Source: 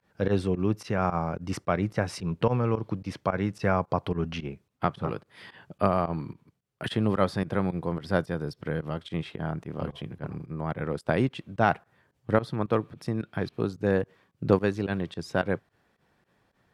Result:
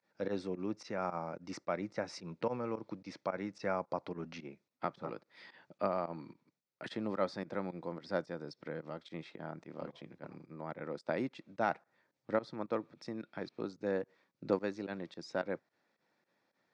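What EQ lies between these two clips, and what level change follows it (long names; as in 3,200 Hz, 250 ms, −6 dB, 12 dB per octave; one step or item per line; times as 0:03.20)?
dynamic equaliser 3,200 Hz, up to −4 dB, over −47 dBFS, Q 0.97
loudspeaker in its box 340–6,200 Hz, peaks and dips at 420 Hz −8 dB, 730 Hz −6 dB, 1,100 Hz −7 dB, 1,600 Hz −6 dB, 3,000 Hz −10 dB
−3.5 dB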